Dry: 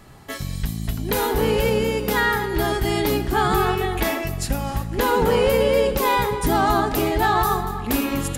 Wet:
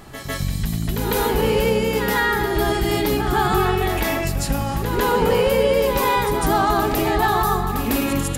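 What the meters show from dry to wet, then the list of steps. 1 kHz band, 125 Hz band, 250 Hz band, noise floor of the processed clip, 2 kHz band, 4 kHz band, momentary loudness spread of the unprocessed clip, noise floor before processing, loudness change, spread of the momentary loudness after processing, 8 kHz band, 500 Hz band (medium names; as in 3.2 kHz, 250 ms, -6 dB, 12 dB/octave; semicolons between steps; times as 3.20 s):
+1.0 dB, +2.0 dB, +1.5 dB, -26 dBFS, +1.0 dB, +1.5 dB, 9 LU, -30 dBFS, +1.0 dB, 6 LU, +2.0 dB, +1.0 dB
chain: in parallel at +3 dB: peak limiter -20 dBFS, peak gain reduction 11.5 dB; on the sum: reverse echo 151 ms -7 dB; trim -3.5 dB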